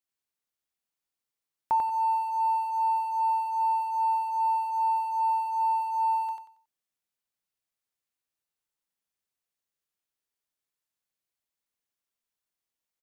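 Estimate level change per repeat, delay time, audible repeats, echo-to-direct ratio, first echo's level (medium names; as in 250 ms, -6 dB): -12.0 dB, 92 ms, 3, -2.5 dB, -3.0 dB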